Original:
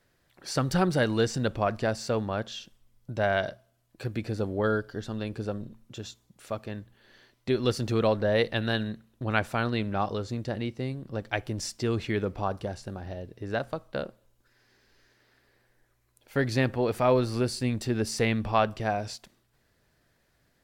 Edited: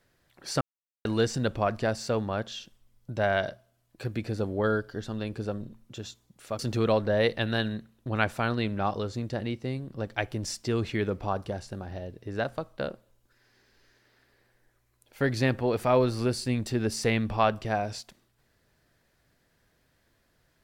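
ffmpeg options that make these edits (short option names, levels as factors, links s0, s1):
-filter_complex "[0:a]asplit=4[s0][s1][s2][s3];[s0]atrim=end=0.61,asetpts=PTS-STARTPTS,afade=t=out:st=0.606:d=0.004:c=hsin[s4];[s1]atrim=start=0.61:end=1.05,asetpts=PTS-STARTPTS,volume=0[s5];[s2]atrim=start=1.05:end=6.592,asetpts=PTS-STARTPTS,afade=t=in:d=0.004:c=hsin[s6];[s3]atrim=start=7.738[s7];[s4][s5][s6]concat=n=3:v=0:a=1[s8];[s8][s7]acrossfade=d=0.004:c1=hsin:c2=hsin"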